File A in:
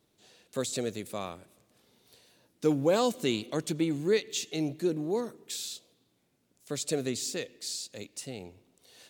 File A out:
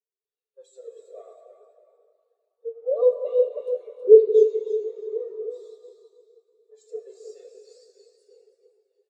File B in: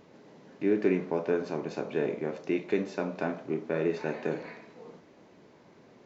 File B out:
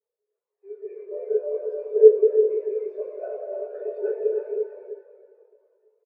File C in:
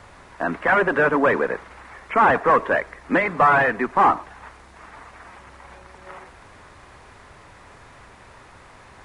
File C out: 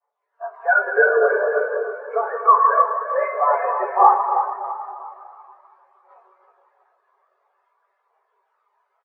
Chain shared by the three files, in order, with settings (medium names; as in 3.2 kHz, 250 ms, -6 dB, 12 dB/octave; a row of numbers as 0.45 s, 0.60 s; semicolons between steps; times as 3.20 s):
jump at every zero crossing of -28.5 dBFS; dynamic bell 1.9 kHz, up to -5 dB, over -41 dBFS, Q 5.9; compression 12:1, threshold -21 dBFS; expander -27 dBFS; phaser 0.49 Hz, delay 1.9 ms, feedback 42%; brick-wall FIR high-pass 370 Hz; feedback delay 321 ms, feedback 48%, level -5.5 dB; plate-style reverb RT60 5 s, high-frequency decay 0.7×, DRR -3 dB; spectral contrast expander 2.5:1; peak normalisation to -1.5 dBFS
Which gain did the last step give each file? +7.5 dB, +8.5 dB, +6.0 dB